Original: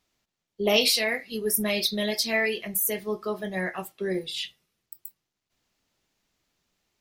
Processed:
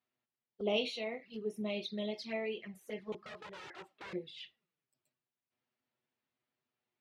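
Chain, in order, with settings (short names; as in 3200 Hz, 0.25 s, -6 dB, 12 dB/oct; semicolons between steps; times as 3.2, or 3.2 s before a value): 3.12–4.13 wrapped overs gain 29 dB; BPF 130–2800 Hz; envelope flanger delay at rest 8.2 ms, full sweep at -26 dBFS; gain -8.5 dB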